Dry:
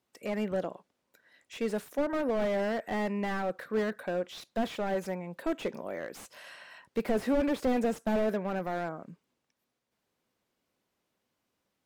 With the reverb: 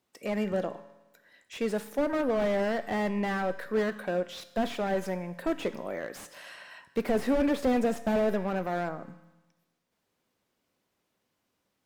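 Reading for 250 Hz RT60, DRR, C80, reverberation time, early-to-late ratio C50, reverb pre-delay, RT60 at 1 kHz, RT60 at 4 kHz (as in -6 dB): 1.1 s, 11.5 dB, 15.5 dB, 1.1 s, 14.0 dB, 7 ms, 1.1 s, 1.1 s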